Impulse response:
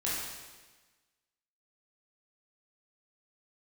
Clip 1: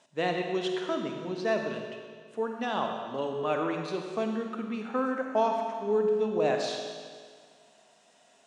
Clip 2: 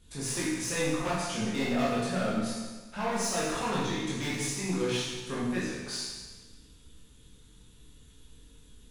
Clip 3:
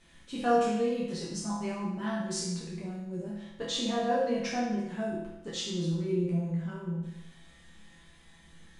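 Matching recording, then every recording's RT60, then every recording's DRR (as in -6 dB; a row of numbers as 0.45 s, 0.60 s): 2; 1.8 s, 1.3 s, 0.90 s; 3.0 dB, -8.0 dB, -8.0 dB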